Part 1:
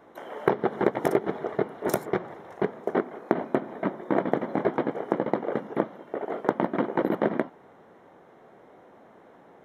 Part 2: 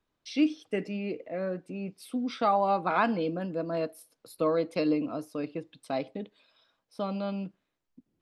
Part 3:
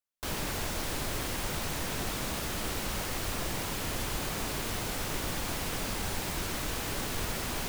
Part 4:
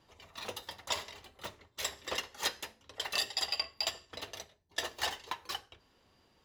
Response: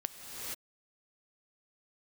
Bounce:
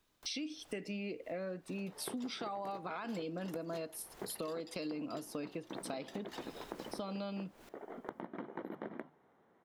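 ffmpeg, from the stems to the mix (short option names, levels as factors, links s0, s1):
-filter_complex "[0:a]equalizer=f=560:t=o:w=0.77:g=-3.5,bandreject=f=50:t=h:w=6,bandreject=f=100:t=h:w=6,bandreject=f=150:t=h:w=6,adelay=1600,volume=0.178[s0];[1:a]highshelf=f=3000:g=10,alimiter=limit=0.0708:level=0:latency=1:release=123,volume=1.26,asplit=2[s1][s2];[2:a]acrossover=split=250|2400[s3][s4][s5];[s3]acompressor=threshold=0.00398:ratio=4[s6];[s4]acompressor=threshold=0.00708:ratio=4[s7];[s5]acompressor=threshold=0.00355:ratio=4[s8];[s6][s7][s8]amix=inputs=3:normalize=0,alimiter=level_in=5.62:limit=0.0631:level=0:latency=1,volume=0.178,volume=0.422[s9];[3:a]adelay=1300,volume=0.188[s10];[s2]apad=whole_len=339095[s11];[s9][s11]sidechaincompress=threshold=0.00251:ratio=3:attack=16:release=188[s12];[s0][s1][s12][s10]amix=inputs=4:normalize=0,acompressor=threshold=0.0112:ratio=5"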